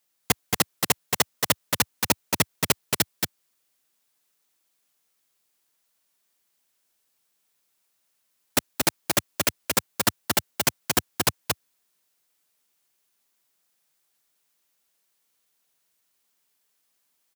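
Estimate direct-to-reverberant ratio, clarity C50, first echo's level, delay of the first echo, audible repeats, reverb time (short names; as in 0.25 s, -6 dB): none, none, -3.5 dB, 0.227 s, 1, none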